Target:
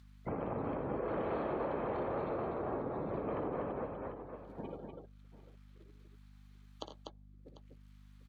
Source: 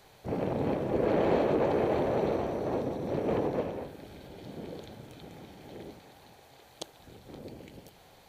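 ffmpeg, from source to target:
-filter_complex "[0:a]aeval=exprs='val(0)+0.5*0.0075*sgn(val(0))':c=same,agate=range=-23dB:threshold=-37dB:ratio=16:detection=peak,afftdn=nr=34:nf=-49,acrossover=split=190|1300[a][b][c];[c]acompressor=mode=upward:threshold=-50dB:ratio=2.5[d];[a][b][d]amix=inputs=3:normalize=0,aecho=1:1:58|84|98|245|745:0.316|0.237|0.15|0.531|0.119,acompressor=threshold=-39dB:ratio=3,equalizer=f=1.2k:t=o:w=0.64:g=10.5,aeval=exprs='val(0)+0.00158*(sin(2*PI*50*n/s)+sin(2*PI*2*50*n/s)/2+sin(2*PI*3*50*n/s)/3+sin(2*PI*4*50*n/s)/4+sin(2*PI*5*50*n/s)/5)':c=same,highshelf=f=6.7k:g=-9"

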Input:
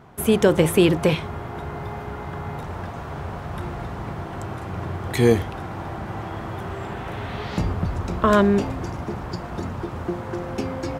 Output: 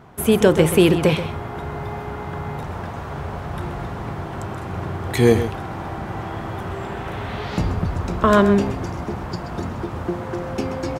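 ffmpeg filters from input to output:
-af "aecho=1:1:130:0.266,volume=2dB"

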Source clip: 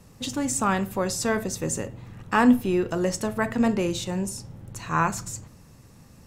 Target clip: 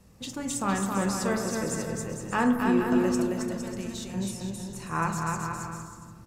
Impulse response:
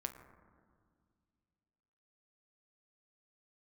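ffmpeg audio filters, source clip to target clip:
-filter_complex "[0:a]asettb=1/sr,asplit=3[a][b][c];[a]atrim=end=3.114[d];[b]atrim=start=3.11:end=4.14,asetpts=PTS-STARTPTS,afade=t=in:d=0.004:c=qsin,afade=t=out:st=1.026:d=0.004:c=qsin,acrossover=split=140|3000[e][f][g];[f]acompressor=threshold=-41dB:ratio=3[h];[e][h][g]amix=inputs=3:normalize=0[i];[c]atrim=start=4.136[j];[d][i]acrossfade=d=0.004:c1=hsin:c2=qsin[k];[k][j]acrossfade=d=0.004:c1=qsin:c2=hsin,aecho=1:1:270|459|591.3|683.9|748.7:0.631|0.398|0.251|0.158|0.1[l];[1:a]atrim=start_sample=2205[m];[l][m]afir=irnorm=-1:irlink=0,volume=-3.5dB"

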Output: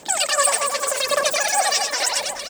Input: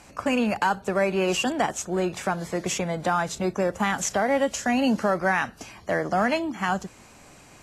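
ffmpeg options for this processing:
-filter_complex "[0:a]asetrate=134946,aresample=44100,aphaser=in_gain=1:out_gain=1:delay=4.5:decay=0.6:speed=0.86:type=sinusoidal,equalizer=f=125:t=o:w=1:g=-5,equalizer=f=500:t=o:w=1:g=4,equalizer=f=2k:t=o:w=1:g=-5,equalizer=f=8k:t=o:w=1:g=11,asplit=2[a][b];[b]aecho=0:1:90|225|427.5|731.2|1187:0.631|0.398|0.251|0.158|0.1[c];[a][c]amix=inputs=2:normalize=0,volume=-1.5dB"

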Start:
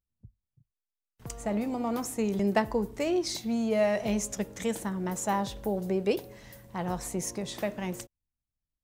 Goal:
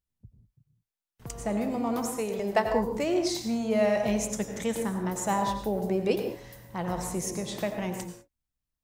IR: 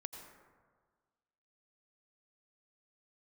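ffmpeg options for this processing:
-filter_complex "[0:a]asettb=1/sr,asplit=3[a][b][c];[a]atrim=end=2.084[d];[b]atrim=start=2.08:end=2.66,asetpts=PTS-STARTPTS,afade=t=in:d=0.004:c=qsin,afade=t=out:st=0.576:d=0.004:c=qsin,lowshelf=f=380:t=q:w=1.5:g=-7[e];[c]atrim=start=2.656[f];[d][e]acrossfade=d=0.004:c1=hsin:c2=qsin[g];[g][f]acrossfade=d=0.004:c1=qsin:c2=hsin[h];[1:a]atrim=start_sample=2205,afade=t=out:st=0.26:d=0.01,atrim=end_sample=11907[i];[h][i]afir=irnorm=-1:irlink=0,volume=5dB"

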